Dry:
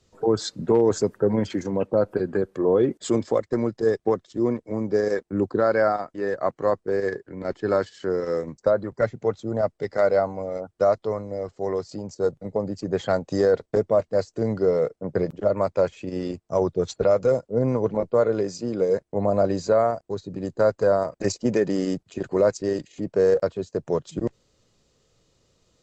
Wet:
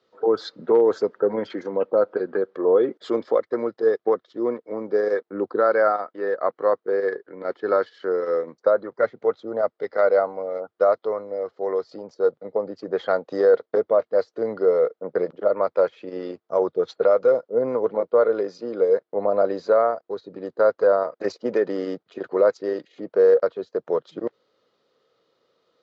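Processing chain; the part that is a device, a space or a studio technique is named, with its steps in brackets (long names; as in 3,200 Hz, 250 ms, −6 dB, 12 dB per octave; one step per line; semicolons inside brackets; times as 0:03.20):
phone earpiece (loudspeaker in its box 350–4,100 Hz, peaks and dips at 480 Hz +5 dB, 1,300 Hz +6 dB, 2,600 Hz −6 dB)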